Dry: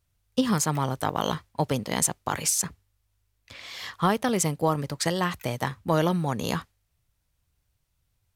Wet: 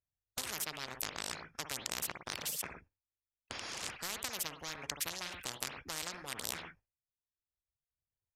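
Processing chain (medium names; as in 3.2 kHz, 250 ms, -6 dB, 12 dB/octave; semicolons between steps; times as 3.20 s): local Wiener filter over 15 samples; gate -55 dBFS, range -34 dB; in parallel at 0 dB: compression, threshold -33 dBFS, peak gain reduction 14.5 dB; on the sum: Bessel low-pass 7.9 kHz, order 8; bass shelf 180 Hz -6 dB; formant shift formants +5 st; reverb removal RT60 0.9 s; on a send at -15.5 dB: reverberation, pre-delay 55 ms; on the sum: spectrum-flattening compressor 10:1; trim -5 dB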